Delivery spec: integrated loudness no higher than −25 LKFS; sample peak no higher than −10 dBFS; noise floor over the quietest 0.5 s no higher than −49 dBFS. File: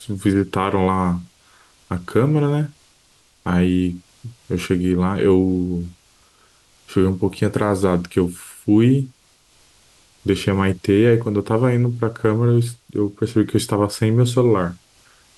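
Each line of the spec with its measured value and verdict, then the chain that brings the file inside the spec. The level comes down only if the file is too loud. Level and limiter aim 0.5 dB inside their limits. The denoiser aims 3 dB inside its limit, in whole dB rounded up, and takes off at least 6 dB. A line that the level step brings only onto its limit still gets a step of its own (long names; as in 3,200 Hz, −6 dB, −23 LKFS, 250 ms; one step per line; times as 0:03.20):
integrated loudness −19.5 LKFS: out of spec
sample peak −5.0 dBFS: out of spec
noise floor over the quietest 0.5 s −56 dBFS: in spec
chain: level −6 dB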